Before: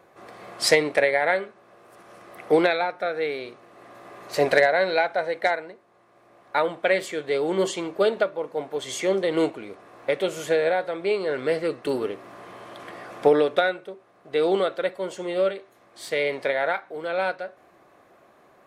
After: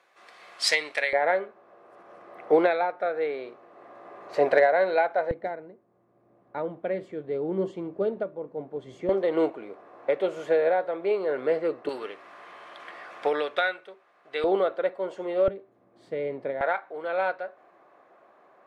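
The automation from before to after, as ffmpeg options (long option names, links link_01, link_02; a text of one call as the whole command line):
ffmpeg -i in.wav -af "asetnsamples=nb_out_samples=441:pad=0,asendcmd='1.13 bandpass f 660;5.31 bandpass f 160;9.09 bandpass f 640;11.89 bandpass f 1900;14.44 bandpass f 670;15.48 bandpass f 190;16.61 bandpass f 870',bandpass=frequency=3400:width_type=q:width=0.65:csg=0" out.wav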